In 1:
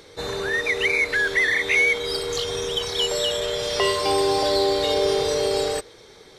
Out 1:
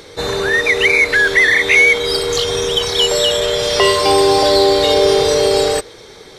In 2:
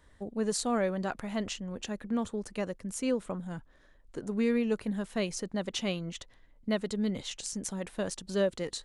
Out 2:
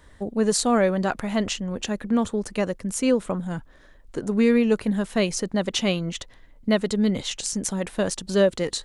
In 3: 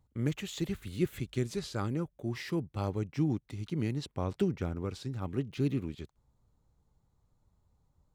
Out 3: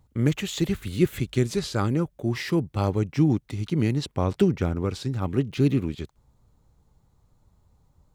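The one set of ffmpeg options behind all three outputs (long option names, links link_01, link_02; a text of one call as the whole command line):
ffmpeg -i in.wav -af "acontrast=31,volume=4dB" out.wav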